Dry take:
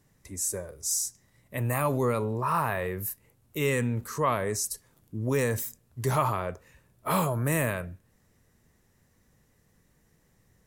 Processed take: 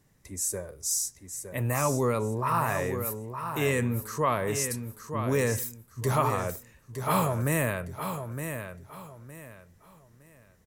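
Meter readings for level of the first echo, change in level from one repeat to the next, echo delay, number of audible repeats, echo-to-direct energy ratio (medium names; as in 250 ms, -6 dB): -8.0 dB, -11.0 dB, 913 ms, 3, -7.5 dB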